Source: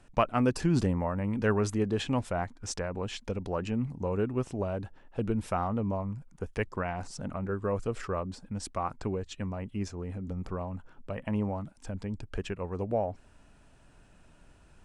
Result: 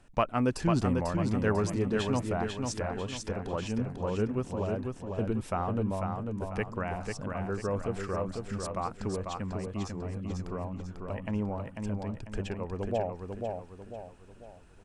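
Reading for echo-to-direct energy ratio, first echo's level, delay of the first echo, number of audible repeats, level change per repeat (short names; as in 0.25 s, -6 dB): -3.5 dB, -4.5 dB, 0.495 s, 4, -7.5 dB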